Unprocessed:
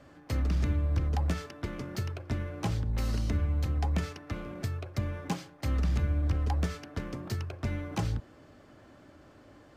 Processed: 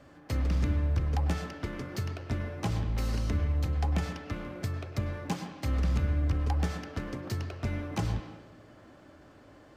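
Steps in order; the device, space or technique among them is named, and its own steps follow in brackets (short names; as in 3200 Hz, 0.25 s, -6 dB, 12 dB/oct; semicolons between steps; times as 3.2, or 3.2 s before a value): filtered reverb send (on a send: HPF 180 Hz 12 dB/oct + LPF 3600 Hz 12 dB/oct + reverb RT60 1.0 s, pre-delay 96 ms, DRR 6 dB)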